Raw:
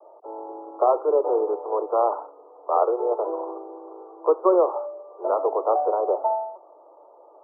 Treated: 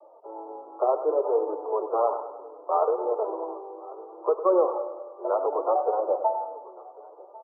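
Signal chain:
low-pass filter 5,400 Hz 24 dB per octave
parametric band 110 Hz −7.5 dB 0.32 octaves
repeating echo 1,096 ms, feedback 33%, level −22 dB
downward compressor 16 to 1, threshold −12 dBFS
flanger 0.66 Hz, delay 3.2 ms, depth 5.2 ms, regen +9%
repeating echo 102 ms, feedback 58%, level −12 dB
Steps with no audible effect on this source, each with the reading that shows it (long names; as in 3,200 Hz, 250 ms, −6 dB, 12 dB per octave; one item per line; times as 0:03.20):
low-pass filter 5,400 Hz: nothing at its input above 1,400 Hz
parametric band 110 Hz: nothing at its input below 290 Hz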